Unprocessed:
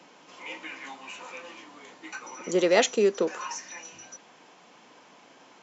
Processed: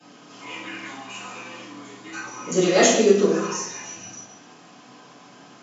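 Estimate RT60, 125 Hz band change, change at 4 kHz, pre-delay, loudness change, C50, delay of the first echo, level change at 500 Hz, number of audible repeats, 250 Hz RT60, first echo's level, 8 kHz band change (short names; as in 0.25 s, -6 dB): 0.85 s, +12.0 dB, +6.0 dB, 3 ms, +7.0 dB, 1.0 dB, none, +5.5 dB, none, 1.0 s, none, n/a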